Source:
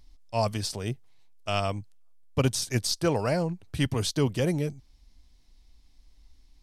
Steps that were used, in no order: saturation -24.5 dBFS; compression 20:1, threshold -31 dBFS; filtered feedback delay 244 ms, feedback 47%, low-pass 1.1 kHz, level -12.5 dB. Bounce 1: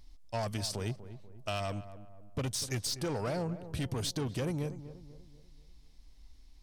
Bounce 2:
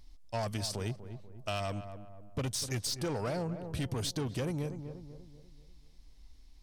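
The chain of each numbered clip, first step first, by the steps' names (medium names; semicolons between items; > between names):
saturation > compression > filtered feedback delay; saturation > filtered feedback delay > compression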